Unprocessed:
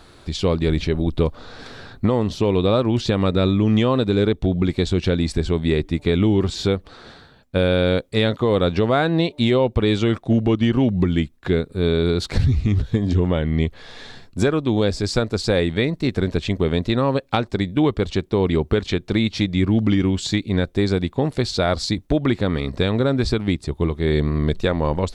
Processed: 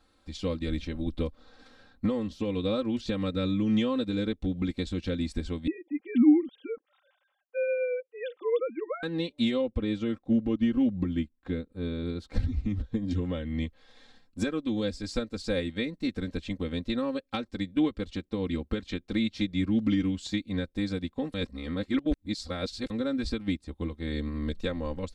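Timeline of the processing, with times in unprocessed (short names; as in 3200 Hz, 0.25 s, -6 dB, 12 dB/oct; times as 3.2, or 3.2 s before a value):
5.67–9.03 sine-wave speech
9.61–13.08 high shelf 2100 Hz -9 dB
21.34–22.9 reverse
whole clip: comb 3.8 ms, depth 92%; dynamic EQ 830 Hz, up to -8 dB, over -33 dBFS, Q 1.2; upward expander 1.5:1, over -37 dBFS; gain -7 dB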